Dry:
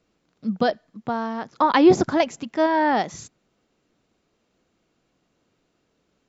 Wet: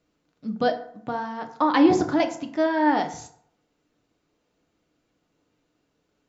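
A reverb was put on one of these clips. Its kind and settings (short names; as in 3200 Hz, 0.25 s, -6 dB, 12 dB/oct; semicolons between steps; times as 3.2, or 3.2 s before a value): FDN reverb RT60 0.64 s, low-frequency decay 0.85×, high-frequency decay 0.55×, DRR 4.5 dB; gain -4 dB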